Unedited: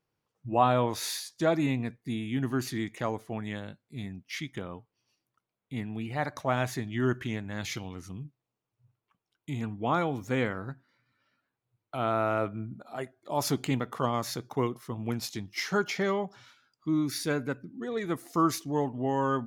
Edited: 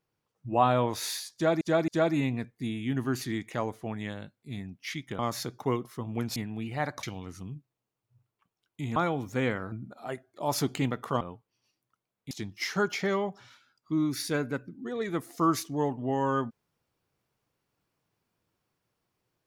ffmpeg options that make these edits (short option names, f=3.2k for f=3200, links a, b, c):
-filter_complex "[0:a]asplit=10[a][b][c][d][e][f][g][h][i][j];[a]atrim=end=1.612[k];[b]atrim=start=1.338:end=1.612[l];[c]atrim=start=1.338:end=4.652[m];[d]atrim=start=14.098:end=15.272[n];[e]atrim=start=5.748:end=6.422[o];[f]atrim=start=7.718:end=9.652[p];[g]atrim=start=9.908:end=10.672[q];[h]atrim=start=12.608:end=14.102[r];[i]atrim=start=4.648:end=5.752[s];[j]atrim=start=15.268[t];[k][l]acrossfade=d=0.004:c1=hsin:c2=hsin[u];[u][m]acrossfade=d=0.004:c1=hsin:c2=hsin[v];[v][n]acrossfade=d=0.004:c1=hsin:c2=hsin[w];[w][o]acrossfade=d=0.004:c1=hsin:c2=hsin[x];[x][p]acrossfade=d=0.004:c1=hsin:c2=hsin[y];[y][q]acrossfade=d=0.004:c1=hsin:c2=hsin[z];[z][r]acrossfade=d=0.004:c1=hsin:c2=hsin[aa];[aa][s]acrossfade=d=0.004:c1=hsin:c2=hsin[ab];[ab][t]acrossfade=d=0.004:c1=hsin:c2=hsin"